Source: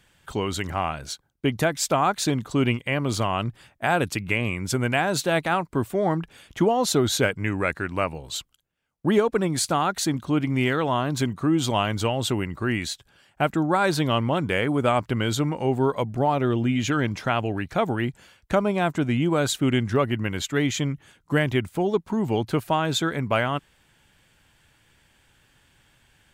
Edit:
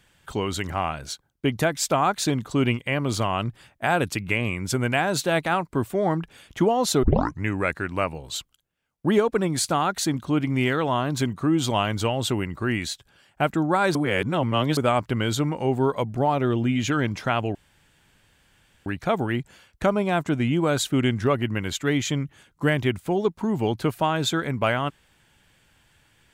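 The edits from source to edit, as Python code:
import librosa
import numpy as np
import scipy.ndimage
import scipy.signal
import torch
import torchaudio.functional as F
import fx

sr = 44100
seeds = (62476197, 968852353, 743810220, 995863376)

y = fx.edit(x, sr, fx.tape_start(start_s=7.03, length_s=0.4),
    fx.reverse_span(start_s=13.95, length_s=0.82),
    fx.insert_room_tone(at_s=17.55, length_s=1.31), tone=tone)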